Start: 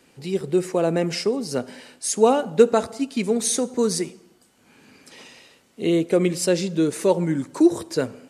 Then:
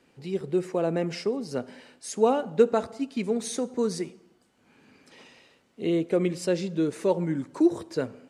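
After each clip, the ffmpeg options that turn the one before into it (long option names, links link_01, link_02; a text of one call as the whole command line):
ffmpeg -i in.wav -af "lowpass=frequency=3300:poles=1,volume=-5dB" out.wav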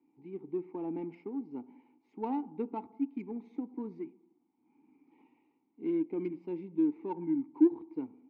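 ffmpeg -i in.wav -filter_complex "[0:a]asplit=3[link_01][link_02][link_03];[link_01]bandpass=frequency=300:width_type=q:width=8,volume=0dB[link_04];[link_02]bandpass=frequency=870:width_type=q:width=8,volume=-6dB[link_05];[link_03]bandpass=frequency=2240:width_type=q:width=8,volume=-9dB[link_06];[link_04][link_05][link_06]amix=inputs=3:normalize=0,adynamicsmooth=sensitivity=3:basefreq=1500,volume=2dB" out.wav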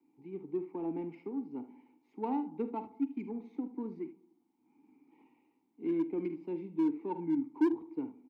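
ffmpeg -i in.wav -filter_complex "[0:a]aecho=1:1:48|75:0.211|0.2,acrossover=split=120|260|710[link_01][link_02][link_03][link_04];[link_03]asoftclip=type=hard:threshold=-30dB[link_05];[link_01][link_02][link_05][link_04]amix=inputs=4:normalize=0" out.wav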